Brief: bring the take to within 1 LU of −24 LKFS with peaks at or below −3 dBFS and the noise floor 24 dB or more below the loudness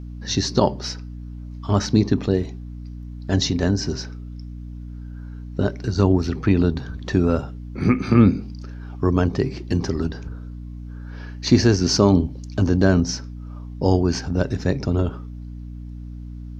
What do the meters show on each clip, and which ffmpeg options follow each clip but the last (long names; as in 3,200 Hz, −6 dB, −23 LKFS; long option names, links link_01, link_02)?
mains hum 60 Hz; hum harmonics up to 300 Hz; level of the hum −32 dBFS; integrated loudness −21.0 LKFS; sample peak −2.0 dBFS; target loudness −24.0 LKFS
→ -af "bandreject=frequency=60:width_type=h:width=4,bandreject=frequency=120:width_type=h:width=4,bandreject=frequency=180:width_type=h:width=4,bandreject=frequency=240:width_type=h:width=4,bandreject=frequency=300:width_type=h:width=4"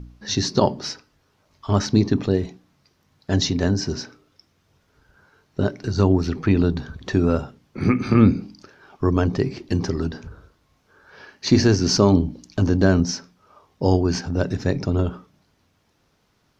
mains hum none found; integrated loudness −21.5 LKFS; sample peak −2.5 dBFS; target loudness −24.0 LKFS
→ -af "volume=-2.5dB"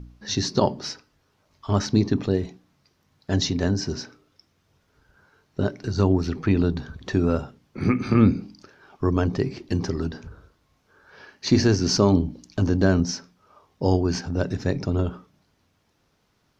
integrated loudness −24.0 LKFS; sample peak −5.0 dBFS; background noise floor −68 dBFS